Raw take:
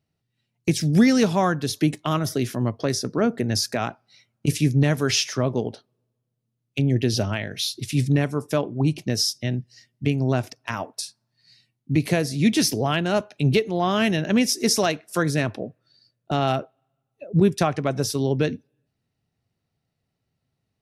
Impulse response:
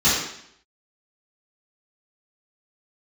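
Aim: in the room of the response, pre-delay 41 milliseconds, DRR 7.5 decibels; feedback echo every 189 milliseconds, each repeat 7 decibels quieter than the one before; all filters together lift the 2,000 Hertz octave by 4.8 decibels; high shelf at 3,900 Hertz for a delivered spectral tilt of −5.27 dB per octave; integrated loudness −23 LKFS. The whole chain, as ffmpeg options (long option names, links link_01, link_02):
-filter_complex "[0:a]equalizer=frequency=2000:width_type=o:gain=7.5,highshelf=frequency=3900:gain=-5.5,aecho=1:1:189|378|567|756|945:0.447|0.201|0.0905|0.0407|0.0183,asplit=2[link_01][link_02];[1:a]atrim=start_sample=2205,adelay=41[link_03];[link_02][link_03]afir=irnorm=-1:irlink=0,volume=-26.5dB[link_04];[link_01][link_04]amix=inputs=2:normalize=0,volume=-2.5dB"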